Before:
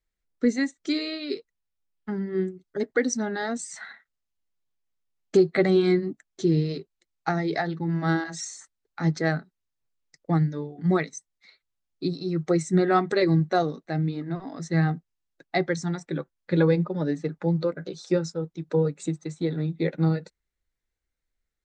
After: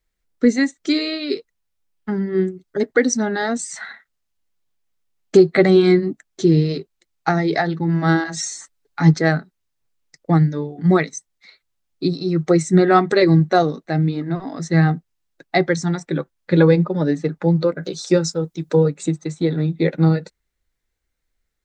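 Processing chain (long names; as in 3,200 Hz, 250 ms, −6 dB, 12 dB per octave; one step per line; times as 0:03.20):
0:08.36–0:09.14: comb filter 7 ms, depth 76%
0:17.83–0:18.84: high-shelf EQ 5,000 Hz +10.5 dB
level +7.5 dB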